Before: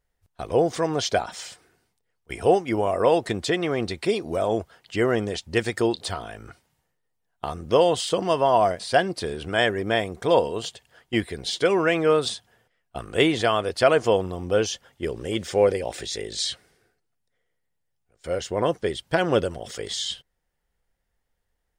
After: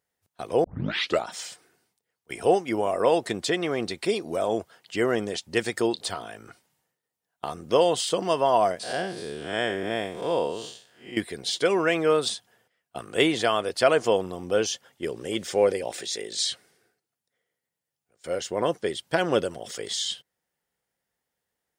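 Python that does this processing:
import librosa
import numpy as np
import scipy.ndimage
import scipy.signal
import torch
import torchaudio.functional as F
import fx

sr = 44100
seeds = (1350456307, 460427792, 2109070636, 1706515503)

y = fx.spec_blur(x, sr, span_ms=167.0, at=(8.83, 11.17))
y = fx.peak_eq(y, sr, hz=61.0, db=-11.0, octaves=2.0, at=(15.95, 16.38))
y = fx.edit(y, sr, fx.tape_start(start_s=0.64, length_s=0.6), tone=tone)
y = scipy.signal.sosfilt(scipy.signal.butter(2, 150.0, 'highpass', fs=sr, output='sos'), y)
y = fx.high_shelf(y, sr, hz=4900.0, db=5.0)
y = y * librosa.db_to_amplitude(-2.0)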